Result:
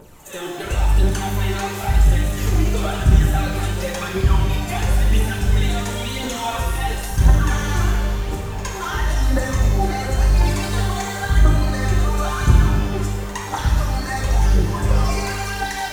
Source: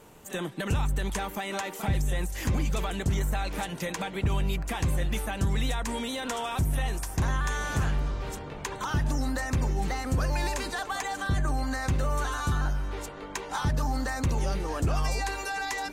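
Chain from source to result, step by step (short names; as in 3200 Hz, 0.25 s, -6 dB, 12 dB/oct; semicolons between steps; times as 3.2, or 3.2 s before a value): phaser 0.96 Hz, delay 3 ms, feedback 79%; pre-echo 63 ms -13.5 dB; shimmer reverb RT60 1.3 s, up +12 st, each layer -8 dB, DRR -1 dB; gain -1 dB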